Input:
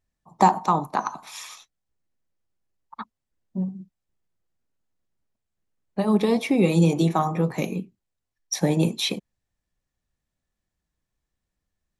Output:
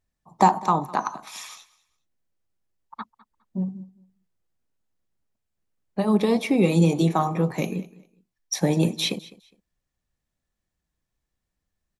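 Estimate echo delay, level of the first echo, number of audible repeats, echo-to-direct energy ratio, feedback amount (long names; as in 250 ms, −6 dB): 205 ms, −20.5 dB, 2, −20.5 dB, 23%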